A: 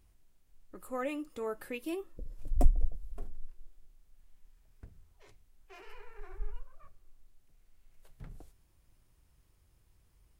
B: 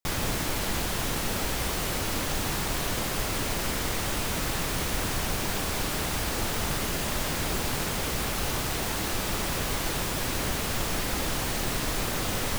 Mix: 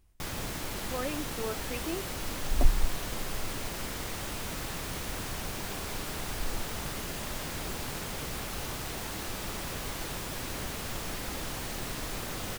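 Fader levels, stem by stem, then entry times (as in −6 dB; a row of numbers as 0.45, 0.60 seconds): +0.5, −7.5 decibels; 0.00, 0.15 seconds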